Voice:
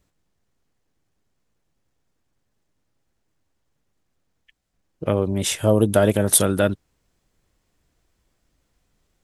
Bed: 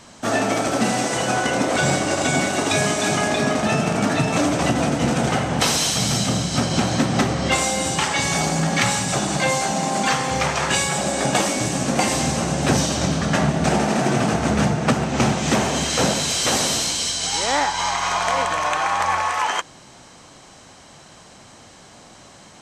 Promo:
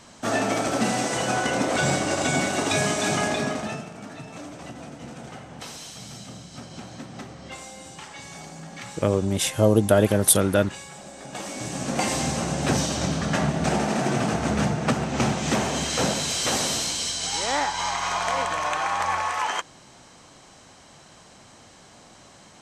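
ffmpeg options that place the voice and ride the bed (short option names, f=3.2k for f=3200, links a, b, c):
-filter_complex "[0:a]adelay=3950,volume=-1dB[a];[1:a]volume=11.5dB,afade=t=out:st=3.24:d=0.65:silence=0.158489,afade=t=in:st=11.28:d=0.81:silence=0.177828[b];[a][b]amix=inputs=2:normalize=0"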